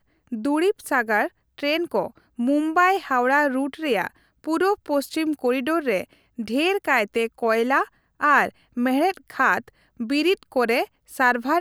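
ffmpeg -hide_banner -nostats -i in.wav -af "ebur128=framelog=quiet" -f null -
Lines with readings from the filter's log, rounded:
Integrated loudness:
  I:         -22.4 LUFS
  Threshold: -32.7 LUFS
Loudness range:
  LRA:         1.8 LU
  Threshold: -42.6 LUFS
  LRA low:   -23.7 LUFS
  LRA high:  -21.9 LUFS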